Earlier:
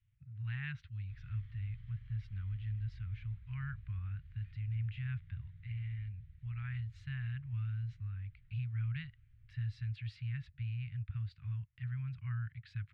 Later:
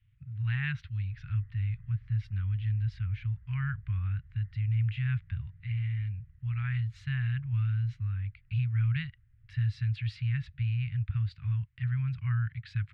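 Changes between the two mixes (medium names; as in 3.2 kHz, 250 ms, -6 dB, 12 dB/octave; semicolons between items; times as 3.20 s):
speech +9.0 dB; background: add brick-wall FIR low-pass 2.1 kHz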